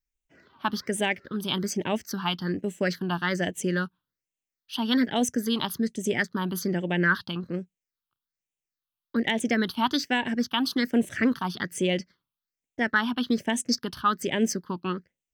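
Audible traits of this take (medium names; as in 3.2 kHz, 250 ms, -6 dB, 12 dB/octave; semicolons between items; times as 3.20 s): phasing stages 6, 1.2 Hz, lowest notch 510–1300 Hz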